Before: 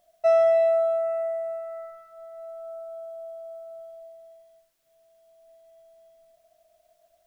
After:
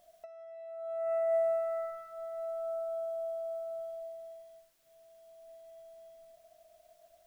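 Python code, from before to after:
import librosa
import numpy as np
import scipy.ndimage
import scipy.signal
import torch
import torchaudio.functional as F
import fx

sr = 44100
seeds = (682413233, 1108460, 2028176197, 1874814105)

y = fx.over_compress(x, sr, threshold_db=-29.0, ratio=-0.5)
y = y * librosa.db_to_amplitude(-3.5)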